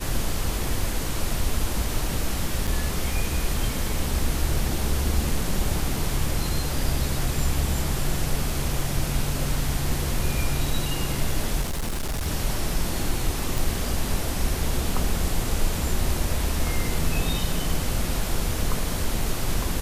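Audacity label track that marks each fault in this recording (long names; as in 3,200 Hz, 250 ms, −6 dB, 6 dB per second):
2.670000	2.680000	drop-out 6.6 ms
11.610000	12.270000	clipping −23.5 dBFS
13.580000	13.580000	click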